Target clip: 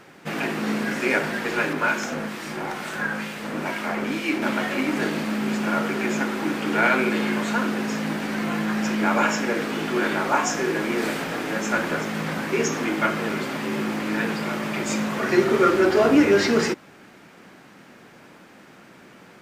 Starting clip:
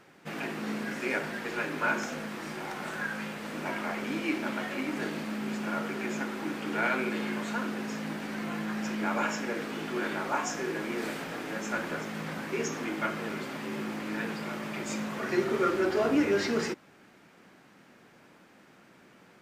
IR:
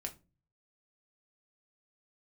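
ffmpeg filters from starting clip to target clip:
-filter_complex "[0:a]asettb=1/sr,asplit=3[link_01][link_02][link_03];[link_01]atrim=end=1.734[link_04];[link_02]atrim=start=1.73:end=4.42,asetpts=PTS-STARTPTS,afade=type=in:duration=0.004:curve=qsin,afade=type=out:start_time=2.686:duration=0.004:curve=qsin,acrossover=split=1900[link_05][link_06];[link_05]aeval=exprs='val(0)*(1-0.5/2+0.5/2*cos(2*PI*2.2*n/s))':channel_layout=same[link_07];[link_06]aeval=exprs='val(0)*(1-0.5/2-0.5/2*cos(2*PI*2.2*n/s))':channel_layout=same[link_08];[link_07][link_08]amix=inputs=2:normalize=0[link_09];[link_03]atrim=start=4.416[link_10];[link_04][link_09]acrossfade=duration=0.004:curve1=hsin:curve2=qsin[link_11];[link_11][link_10]acrossfade=duration=0.004:curve1=qsin:curve2=hsin,volume=9dB"

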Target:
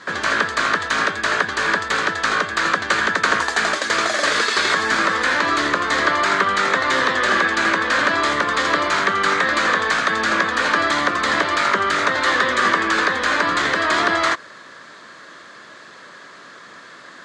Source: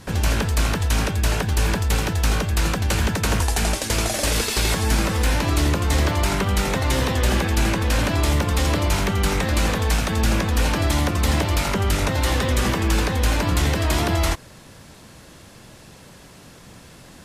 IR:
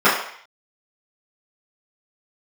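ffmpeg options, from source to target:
-af "highpass=440,equalizer=frequency=490:width_type=q:width=4:gain=-3,equalizer=frequency=810:width_type=q:width=4:gain=-8,equalizer=frequency=1200:width_type=q:width=4:gain=8,equalizer=frequency=1700:width_type=q:width=4:gain=8,equalizer=frequency=2700:width_type=q:width=4:gain=-7,equalizer=frequency=5500:width_type=q:width=4:gain=-8,lowpass=frequency=6100:width=0.5412,lowpass=frequency=6100:width=1.3066,volume=6.5dB"

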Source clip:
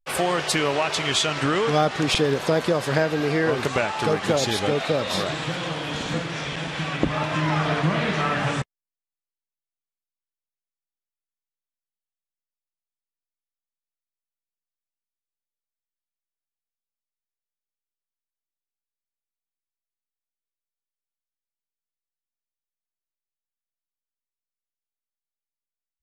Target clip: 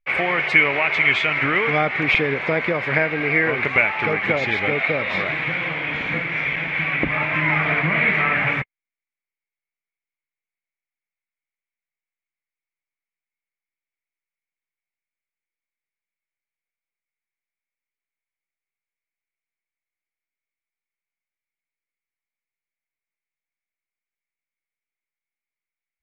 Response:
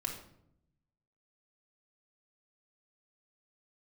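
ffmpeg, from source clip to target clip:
-af "lowpass=frequency=2200:width_type=q:width=10,volume=-2dB"

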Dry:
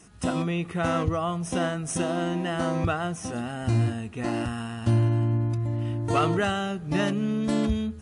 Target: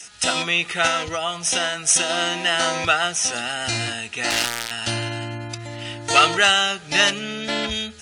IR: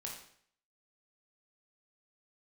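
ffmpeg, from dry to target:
-filter_complex "[0:a]asettb=1/sr,asplit=3[link_01][link_02][link_03];[link_01]atrim=end=7.194[link_04];[link_02]atrim=start=7.19:end=7.71,asetpts=PTS-STARTPTS,afade=type=in:duration=0.004:curve=qsin,afade=type=out:start_time=0.516:duration=0.004:curve=qsin,acrossover=split=3500[link_05][link_06];[link_06]acompressor=threshold=-58dB:ratio=4:attack=1:release=60[link_07];[link_05][link_07]amix=inputs=2:normalize=0[link_08];[link_03]atrim=start=7.706[link_09];[link_04][link_08]acrossfade=duration=0.004:curve1=hsin:curve2=qsin[link_10];[link_10][link_09]acrossfade=duration=0.004:curve1=qsin:curve2=hsin,acrossover=split=430 7700:gain=0.251 1 0.178[link_11][link_12][link_13];[link_11][link_12][link_13]amix=inputs=3:normalize=0,asettb=1/sr,asplit=3[link_14][link_15][link_16];[link_14]atrim=end=4.304[link_17];[link_15]atrim=start=4.3:end=4.71,asetpts=PTS-STARTPTS,afade=type=in:duration=0.004:curve=qsin,afade=type=out:start_time=0.406:duration=0.004:curve=qsin,acrusher=bits=4:mix=0:aa=0.5[link_18];[link_16]atrim=start=4.706[link_19];[link_17][link_18]acrossfade=duration=0.004:curve1=hsin:curve2=qsin[link_20];[link_20][link_19]acrossfade=duration=0.004:curve1=qsin:curve2=hsin,asuperstop=centerf=1100:order=20:qfactor=7.6,equalizer=frequency=3200:width=0.4:gain=8.5,asettb=1/sr,asplit=3[link_21][link_22][link_23];[link_21]atrim=end=0.874[link_24];[link_22]atrim=start=0.87:end=2.1,asetpts=PTS-STARTPTS,afade=type=in:duration=0.004:curve=qsin,afade=type=out:start_time=1.226:duration=0.004:curve=qsin,acompressor=threshold=-28dB:ratio=2[link_25];[link_23]atrim=start=2.096[link_26];[link_24][link_25]acrossfade=duration=0.004:curve1=hsin:curve2=qsin[link_27];[link_27][link_26]acrossfade=duration=0.004:curve1=qsin:curve2=hsin,crystalizer=i=4.5:c=0,volume=3dB"

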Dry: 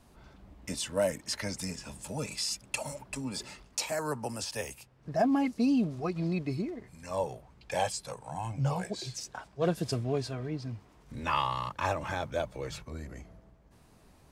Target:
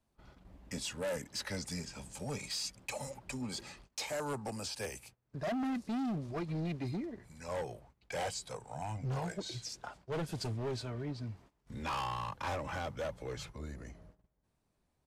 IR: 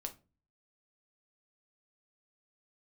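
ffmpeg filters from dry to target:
-filter_complex "[0:a]asetrate=41895,aresample=44100,acrossover=split=300|6100[link_01][link_02][link_03];[link_03]asoftclip=type=tanh:threshold=-39dB[link_04];[link_01][link_02][link_04]amix=inputs=3:normalize=0,agate=range=-17dB:threshold=-54dB:ratio=16:detection=peak,asoftclip=type=hard:threshold=-30dB,aresample=32000,aresample=44100,volume=-3dB"

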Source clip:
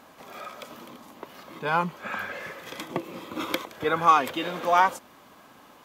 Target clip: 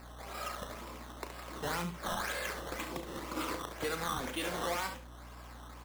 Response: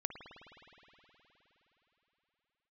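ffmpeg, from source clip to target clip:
-filter_complex "[0:a]lowpass=3400,lowshelf=frequency=350:gain=-8,acrossover=split=360|2000[link_01][link_02][link_03];[link_02]acompressor=threshold=-35dB:ratio=6[link_04];[link_01][link_04][link_03]amix=inputs=3:normalize=0,alimiter=level_in=2.5dB:limit=-24dB:level=0:latency=1:release=92,volume=-2.5dB,acrusher=samples=13:mix=1:aa=0.000001:lfo=1:lforange=13:lforate=2,aeval=exprs='val(0)+0.00251*(sin(2*PI*60*n/s)+sin(2*PI*2*60*n/s)/2+sin(2*PI*3*60*n/s)/3+sin(2*PI*4*60*n/s)/4+sin(2*PI*5*60*n/s)/5)':channel_layout=same,asplit=2[link_05][link_06];[link_06]aecho=0:1:35|70:0.316|0.355[link_07];[link_05][link_07]amix=inputs=2:normalize=0"

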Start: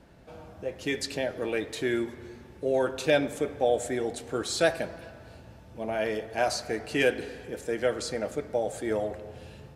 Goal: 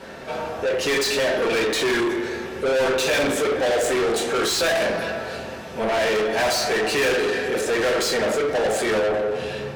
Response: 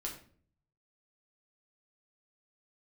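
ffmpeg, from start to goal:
-filter_complex "[1:a]atrim=start_sample=2205,asetrate=57330,aresample=44100[link_01];[0:a][link_01]afir=irnorm=-1:irlink=0,asetnsamples=nb_out_samples=441:pad=0,asendcmd='8.99 lowpass f 3100',asplit=2[link_02][link_03];[link_03]highpass=frequency=720:poles=1,volume=34dB,asoftclip=type=tanh:threshold=-12.5dB[link_04];[link_02][link_04]amix=inputs=2:normalize=0,lowpass=frequency=6100:poles=1,volume=-6dB,volume=-1.5dB"

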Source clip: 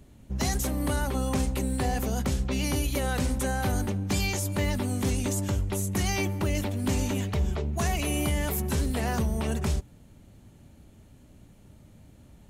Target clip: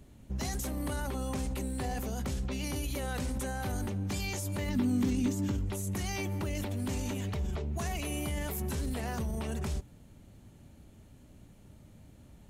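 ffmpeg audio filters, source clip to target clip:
ffmpeg -i in.wav -filter_complex "[0:a]alimiter=level_in=1dB:limit=-24dB:level=0:latency=1:release=28,volume=-1dB,asettb=1/sr,asplit=3[link_01][link_02][link_03];[link_01]atrim=end=4.694[link_04];[link_02]atrim=start=4.69:end=5.66,asetpts=PTS-STARTPTS,afade=type=in:duration=0.004:curve=qsin,afade=type=out:start_time=0.966:duration=0.004:curve=qsin,equalizer=frequency=250:width_type=o:width=0.67:gain=11,equalizer=frequency=630:width_type=o:width=0.67:gain=-5,equalizer=frequency=10000:width_type=o:width=0.67:gain=-9[link_05];[link_03]atrim=start=5.656[link_06];[link_04][link_05]acrossfade=duration=0.004:curve1=hsin:curve2=qsin[link_07];[link_07][link_06]acrossfade=duration=0.004:curve1=qsin:curve2=hsin,volume=-2dB" out.wav

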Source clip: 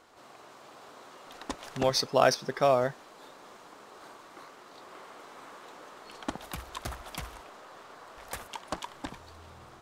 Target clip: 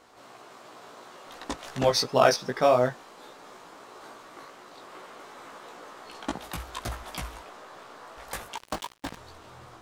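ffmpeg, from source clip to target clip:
ffmpeg -i in.wav -filter_complex "[0:a]flanger=delay=16:depth=2.2:speed=2.8,asettb=1/sr,asplit=3[link_01][link_02][link_03];[link_01]atrim=end=8.574[link_04];[link_02]atrim=start=8.57:end=9.17,asetpts=PTS-STARTPTS,afade=type=in:duration=0.004:curve=qsin,afade=type=out:start_time=0.596:duration=0.004:curve=qsin,acrusher=bits=6:mix=0:aa=0.5[link_05];[link_03]atrim=start=9.166[link_06];[link_04][link_05]acrossfade=duration=0.004:curve1=hsin:curve2=qsin[link_07];[link_07][link_06]acrossfade=duration=0.004:curve1=qsin:curve2=hsin,volume=6dB" out.wav

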